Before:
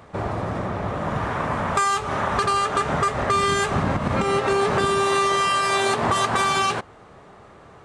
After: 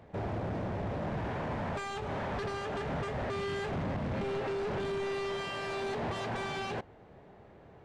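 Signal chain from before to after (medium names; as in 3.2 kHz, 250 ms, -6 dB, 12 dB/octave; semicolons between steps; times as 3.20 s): peaking EQ 1.2 kHz -11.5 dB 0.44 oct; in parallel at -6 dB: bit crusher 5-bit; on the sum: overload inside the chain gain 25.5 dB; tape spacing loss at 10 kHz 22 dB; trim -5.5 dB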